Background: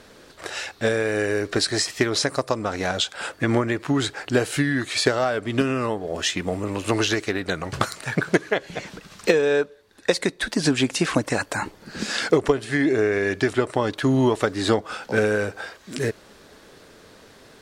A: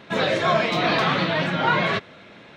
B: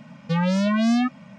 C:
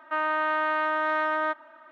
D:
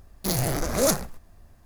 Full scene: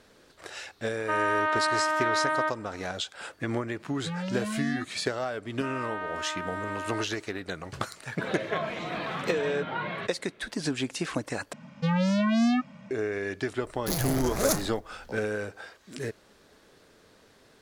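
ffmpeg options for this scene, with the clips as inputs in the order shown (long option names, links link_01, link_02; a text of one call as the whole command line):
ffmpeg -i bed.wav -i cue0.wav -i cue1.wav -i cue2.wav -i cue3.wav -filter_complex "[3:a]asplit=2[link_01][link_02];[2:a]asplit=2[link_03][link_04];[0:a]volume=-9.5dB[link_05];[1:a]lowpass=3400[link_06];[link_05]asplit=2[link_07][link_08];[link_07]atrim=end=11.534[link_09];[link_04]atrim=end=1.38,asetpts=PTS-STARTPTS,volume=-3.5dB[link_10];[link_08]atrim=start=12.906[link_11];[link_01]atrim=end=1.91,asetpts=PTS-STARTPTS,volume=-0.5dB,afade=type=in:duration=0.004:curve=hsin,afade=type=out:start_time=1.906:duration=0.004:curve=hsin,adelay=970[link_12];[link_03]atrim=end=1.38,asetpts=PTS-STARTPTS,volume=-12dB,afade=type=in:duration=0.004:curve=hsin,afade=type=out:start_time=1.376:duration=0.004:curve=hsin,adelay=3760[link_13];[link_02]atrim=end=1.91,asetpts=PTS-STARTPTS,volume=-9.5dB,afade=type=in:duration=0.004:curve=hsin,afade=type=out:start_time=1.906:duration=0.004:curve=hsin,adelay=5510[link_14];[link_06]atrim=end=2.56,asetpts=PTS-STARTPTS,volume=-12.5dB,afade=type=in:duration=0.004:curve=hsin,afade=type=out:start_time=2.556:duration=0.004:curve=hsin,adelay=8080[link_15];[4:a]atrim=end=1.65,asetpts=PTS-STARTPTS,volume=-4dB,afade=type=in:duration=0.004:curve=hsin,afade=type=out:start_time=1.646:duration=0.004:curve=hsin,adelay=13620[link_16];[link_09][link_10]acrossfade=duration=0.004:curve1=hsin:curve2=hsin[link_17];[link_17][link_11]acrossfade=duration=0.004:curve1=hsin:curve2=hsin[link_18];[link_18][link_12][link_13][link_14][link_15][link_16]amix=inputs=6:normalize=0" out.wav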